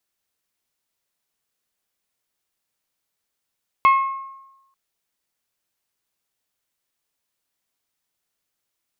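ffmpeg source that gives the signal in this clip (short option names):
-f lavfi -i "aevalsrc='0.355*pow(10,-3*t/0.98)*sin(2*PI*1080*t)+0.119*pow(10,-3*t/0.603)*sin(2*PI*2160*t)+0.0398*pow(10,-3*t/0.531)*sin(2*PI*2592*t)+0.0133*pow(10,-3*t/0.454)*sin(2*PI*3240*t)+0.00447*pow(10,-3*t/0.371)*sin(2*PI*4320*t)':d=0.89:s=44100"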